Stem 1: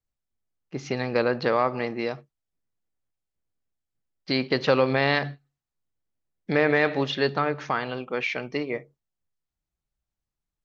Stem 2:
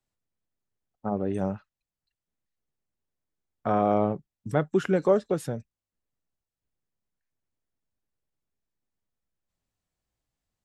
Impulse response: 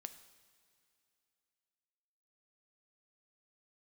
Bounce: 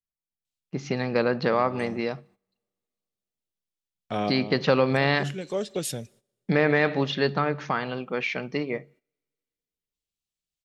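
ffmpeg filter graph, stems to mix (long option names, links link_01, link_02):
-filter_complex "[0:a]deesser=0.5,equalizer=frequency=180:width_type=o:width=0.55:gain=9,volume=-1.5dB,asplit=3[link_01][link_02][link_03];[link_02]volume=-15.5dB[link_04];[1:a]highshelf=frequency=2000:width_type=q:width=1.5:gain=13.5,adelay=450,volume=-4dB,asplit=2[link_05][link_06];[link_06]volume=-9.5dB[link_07];[link_03]apad=whole_len=489242[link_08];[link_05][link_08]sidechaincompress=threshold=-39dB:ratio=8:attack=21:release=390[link_09];[2:a]atrim=start_sample=2205[link_10];[link_04][link_07]amix=inputs=2:normalize=0[link_11];[link_11][link_10]afir=irnorm=-1:irlink=0[link_12];[link_01][link_09][link_12]amix=inputs=3:normalize=0,agate=range=-14dB:threshold=-54dB:ratio=16:detection=peak"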